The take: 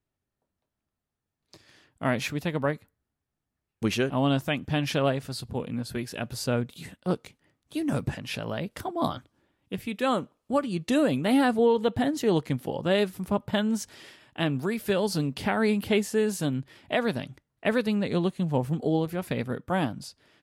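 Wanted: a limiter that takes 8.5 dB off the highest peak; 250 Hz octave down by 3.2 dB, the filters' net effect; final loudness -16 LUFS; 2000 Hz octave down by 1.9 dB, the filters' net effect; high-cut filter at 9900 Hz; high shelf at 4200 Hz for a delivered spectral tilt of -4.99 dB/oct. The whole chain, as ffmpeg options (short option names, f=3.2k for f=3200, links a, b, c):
-af "lowpass=9.9k,equalizer=f=250:t=o:g=-4,equalizer=f=2k:t=o:g=-3.5,highshelf=f=4.2k:g=5,volume=16.5dB,alimiter=limit=-4.5dB:level=0:latency=1"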